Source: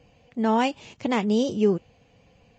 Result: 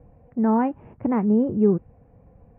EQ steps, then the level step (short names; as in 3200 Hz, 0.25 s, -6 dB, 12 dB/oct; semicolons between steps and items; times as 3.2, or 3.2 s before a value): dynamic EQ 600 Hz, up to -5 dB, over -37 dBFS, Q 1.3; Bessel low-pass 1000 Hz, order 8; low shelf 78 Hz +11 dB; +3.5 dB